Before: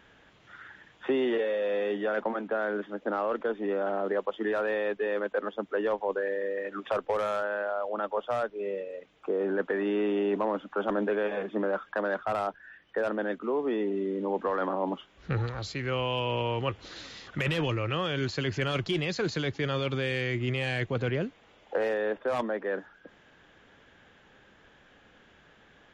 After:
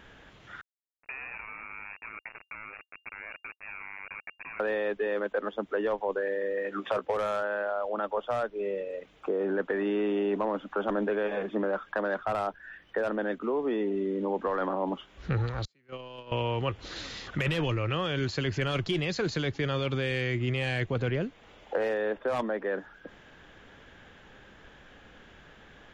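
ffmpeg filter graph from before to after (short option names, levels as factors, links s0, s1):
-filter_complex "[0:a]asettb=1/sr,asplit=3[s0][s1][s2];[s0]atrim=end=0.614[s3];[s1]atrim=start=0.61:end=4.6,asetpts=PTS-STARTPTS,afade=t=in:d=0.004:c=qsin,afade=t=out:st=3.986:d=0.004:c=qsin,acompressor=threshold=0.00398:ratio=2.5:attack=3.2:release=140:knee=1:detection=peak,aeval=exprs='val(0)*gte(abs(val(0)),0.0112)':c=same,lowpass=f=2400:t=q:w=0.5098,lowpass=f=2400:t=q:w=0.6013,lowpass=f=2400:t=q:w=0.9,lowpass=f=2400:t=q:w=2.563,afreqshift=-2800[s4];[s2]atrim=start=4.596[s5];[s3][s4]acrossfade=d=0.004:c1=hsin:c2=qsin[s6];[s6][s5]acrossfade=d=0.004:c1=qsin:c2=hsin,asettb=1/sr,asplit=3[s7][s8][s9];[s7]atrim=end=6.524[s10];[s8]atrim=start=6.52:end=7.17,asetpts=PTS-STARTPTS,afade=t=in:d=0.004:c=qsin,afade=t=out:st=0.646:d=0.004:c=qsin,highpass=79,asplit=2[s11][s12];[s12]adelay=16,volume=0.266[s13];[s11][s13]amix=inputs=2:normalize=0,atrim=end_sample=28665[s14];[s9]atrim=start=7.166[s15];[s10][s14]acrossfade=d=0.004:c1=hsin:c2=qsin[s16];[s16][s15]acrossfade=d=0.004:c1=qsin:c2=hsin,asettb=1/sr,asplit=3[s17][s18][s19];[s17]atrim=end=15.654[s20];[s18]atrim=start=15.65:end=16.32,asetpts=PTS-STARTPTS,afade=t=in:d=0.004:c=qsin,afade=t=out:st=0.666:d=0.004:c=qsin,highpass=f=150:w=0.5412,highpass=f=150:w=1.3066,agate=range=0.0141:threshold=0.0398:ratio=16:release=100:detection=peak[s21];[s19]atrim=start=16.316[s22];[s20][s21]acrossfade=d=0.004:c1=hsin:c2=qsin[s23];[s23][s22]acrossfade=d=0.004:c1=qsin:c2=hsin,lowshelf=f=61:g=10,acompressor=threshold=0.0112:ratio=1.5,volume=1.68"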